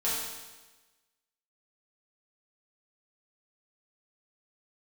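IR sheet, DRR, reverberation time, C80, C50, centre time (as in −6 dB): −9.5 dB, 1.2 s, 2.5 dB, 0.0 dB, 80 ms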